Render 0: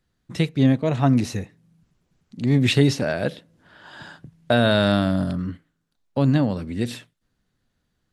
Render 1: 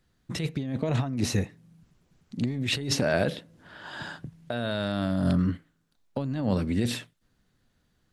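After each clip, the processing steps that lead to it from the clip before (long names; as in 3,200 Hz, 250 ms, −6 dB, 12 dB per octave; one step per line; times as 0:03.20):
compressor whose output falls as the input rises −25 dBFS, ratio −1
level −2 dB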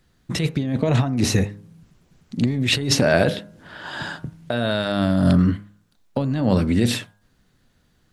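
hum removal 102.4 Hz, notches 16
level +8 dB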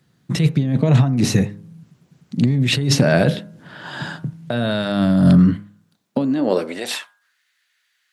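high-pass filter sweep 140 Hz → 2,000 Hz, 0:05.96–0:07.41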